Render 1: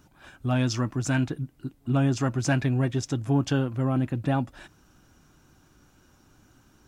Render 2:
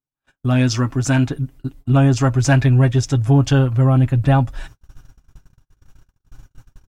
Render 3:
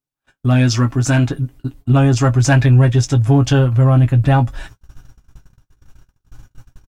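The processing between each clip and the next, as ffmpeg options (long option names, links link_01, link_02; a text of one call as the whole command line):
ffmpeg -i in.wav -af "asubboost=boost=11:cutoff=68,aecho=1:1:7.4:0.52,agate=range=-45dB:threshold=-43dB:ratio=16:detection=peak,volume=7dB" out.wav
ffmpeg -i in.wav -filter_complex "[0:a]asplit=2[link_01][link_02];[link_02]asoftclip=type=hard:threshold=-12.5dB,volume=-10dB[link_03];[link_01][link_03]amix=inputs=2:normalize=0,asplit=2[link_04][link_05];[link_05]adelay=17,volume=-10dB[link_06];[link_04][link_06]amix=inputs=2:normalize=0" out.wav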